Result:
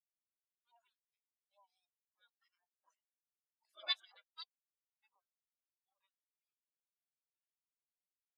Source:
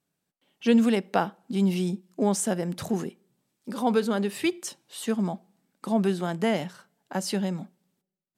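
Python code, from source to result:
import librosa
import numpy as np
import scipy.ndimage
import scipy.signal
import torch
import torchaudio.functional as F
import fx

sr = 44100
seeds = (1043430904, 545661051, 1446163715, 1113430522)

y = fx.doppler_pass(x, sr, speed_mps=8, closest_m=5.9, pass_at_s=3.64)
y = fx.spec_gate(y, sr, threshold_db=-30, keep='weak')
y = scipy.signal.sosfilt(scipy.signal.butter(2, 310.0, 'highpass', fs=sr, output='sos'), y)
y = fx.spectral_expand(y, sr, expansion=4.0)
y = y * librosa.db_to_amplitude(8.5)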